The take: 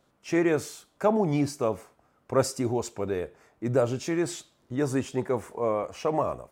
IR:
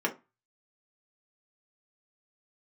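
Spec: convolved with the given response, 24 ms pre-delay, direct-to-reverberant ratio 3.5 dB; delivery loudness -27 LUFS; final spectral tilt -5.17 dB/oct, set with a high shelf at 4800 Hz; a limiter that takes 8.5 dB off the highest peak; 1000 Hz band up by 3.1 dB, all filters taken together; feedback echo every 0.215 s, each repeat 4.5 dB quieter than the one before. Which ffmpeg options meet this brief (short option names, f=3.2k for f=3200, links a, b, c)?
-filter_complex "[0:a]equalizer=f=1k:t=o:g=3.5,highshelf=f=4.8k:g=7,alimiter=limit=-16.5dB:level=0:latency=1,aecho=1:1:215|430|645|860|1075|1290|1505|1720|1935:0.596|0.357|0.214|0.129|0.0772|0.0463|0.0278|0.0167|0.01,asplit=2[a][b];[1:a]atrim=start_sample=2205,adelay=24[c];[b][c]afir=irnorm=-1:irlink=0,volume=-12.5dB[d];[a][d]amix=inputs=2:normalize=0,volume=-1.5dB"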